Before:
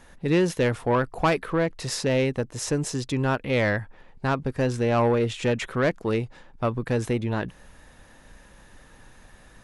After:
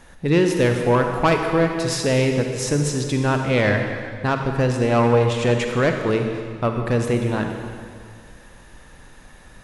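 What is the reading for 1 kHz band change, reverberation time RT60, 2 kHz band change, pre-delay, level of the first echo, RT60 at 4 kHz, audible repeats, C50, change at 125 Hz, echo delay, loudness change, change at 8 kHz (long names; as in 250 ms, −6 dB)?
+5.0 dB, 2.0 s, +5.0 dB, 40 ms, no echo audible, 1.8 s, no echo audible, 4.5 dB, +6.0 dB, no echo audible, +5.0 dB, +5.0 dB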